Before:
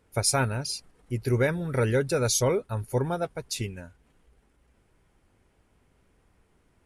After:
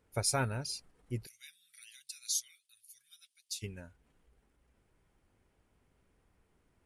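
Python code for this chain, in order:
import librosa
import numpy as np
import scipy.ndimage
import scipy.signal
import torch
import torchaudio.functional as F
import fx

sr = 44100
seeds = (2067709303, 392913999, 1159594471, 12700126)

y = fx.cheby2_highpass(x, sr, hz=950.0, order=4, stop_db=60, at=(1.25, 3.62), fade=0.02)
y = F.gain(torch.from_numpy(y), -7.0).numpy()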